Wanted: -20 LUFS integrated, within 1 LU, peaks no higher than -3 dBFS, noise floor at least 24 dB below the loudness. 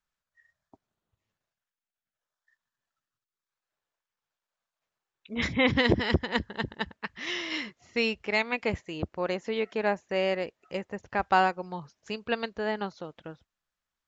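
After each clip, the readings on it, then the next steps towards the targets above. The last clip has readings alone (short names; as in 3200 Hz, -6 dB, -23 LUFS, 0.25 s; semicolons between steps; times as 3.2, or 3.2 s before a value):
loudness -29.5 LUFS; peak -9.0 dBFS; loudness target -20.0 LUFS
-> gain +9.5 dB; limiter -3 dBFS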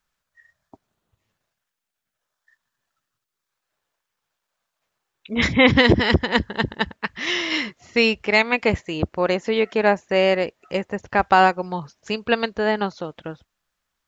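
loudness -20.5 LUFS; peak -3.0 dBFS; noise floor -82 dBFS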